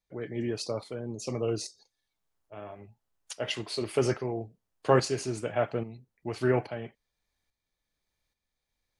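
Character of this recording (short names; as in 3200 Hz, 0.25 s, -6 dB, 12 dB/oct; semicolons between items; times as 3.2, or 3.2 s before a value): tremolo saw up 1.2 Hz, depth 60%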